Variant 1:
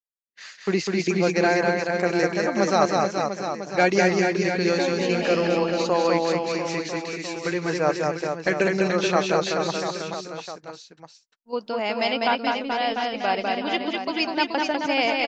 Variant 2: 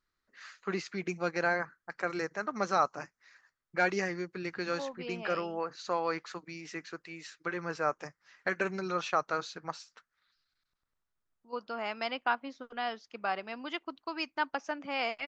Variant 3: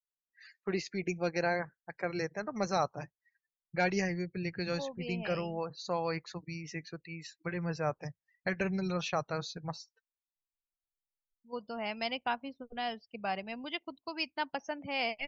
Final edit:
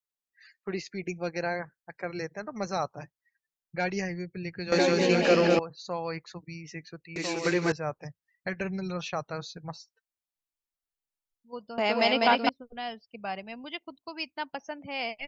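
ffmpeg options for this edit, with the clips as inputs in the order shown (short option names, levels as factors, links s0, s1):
-filter_complex "[0:a]asplit=3[s0][s1][s2];[2:a]asplit=4[s3][s4][s5][s6];[s3]atrim=end=4.722[s7];[s0]atrim=start=4.718:end=5.592[s8];[s4]atrim=start=5.588:end=7.162[s9];[s1]atrim=start=7.158:end=7.722[s10];[s5]atrim=start=7.718:end=11.782[s11];[s2]atrim=start=11.778:end=12.492[s12];[s6]atrim=start=12.488[s13];[s7][s8]acrossfade=d=0.004:c1=hsin:c2=hsin[s14];[s14][s9]acrossfade=d=0.004:c1=hsin:c2=hsin[s15];[s15][s10]acrossfade=d=0.004:c1=hsin:c2=hsin[s16];[s16][s11]acrossfade=d=0.004:c1=hsin:c2=hsin[s17];[s17][s12]acrossfade=d=0.004:c1=hsin:c2=hsin[s18];[s18][s13]acrossfade=d=0.004:c1=hsin:c2=hsin"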